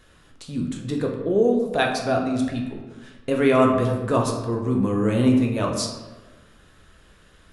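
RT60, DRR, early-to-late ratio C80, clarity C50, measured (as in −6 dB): 1.3 s, 0.5 dB, 7.0 dB, 5.0 dB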